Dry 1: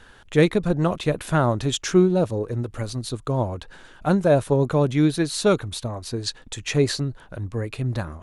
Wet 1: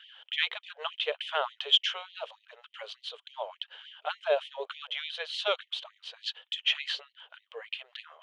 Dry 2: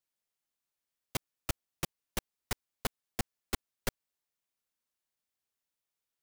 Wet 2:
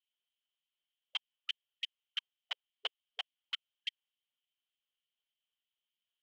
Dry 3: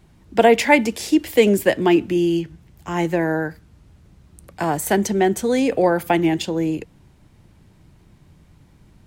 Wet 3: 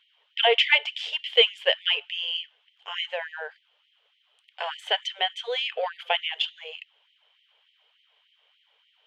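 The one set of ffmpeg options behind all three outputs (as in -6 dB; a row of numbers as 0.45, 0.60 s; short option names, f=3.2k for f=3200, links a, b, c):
-af "aeval=exprs='0.891*(cos(1*acos(clip(val(0)/0.891,-1,1)))-cos(1*PI/2))+0.0141*(cos(7*acos(clip(val(0)/0.891,-1,1)))-cos(7*PI/2))':c=same,lowpass=f=3.1k:t=q:w=12,afftfilt=real='re*gte(b*sr/1024,390*pow(1900/390,0.5+0.5*sin(2*PI*3.4*pts/sr)))':imag='im*gte(b*sr/1024,390*pow(1900/390,0.5+0.5*sin(2*PI*3.4*pts/sr)))':win_size=1024:overlap=0.75,volume=-7.5dB"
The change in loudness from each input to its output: -9.0, -2.0, -5.5 LU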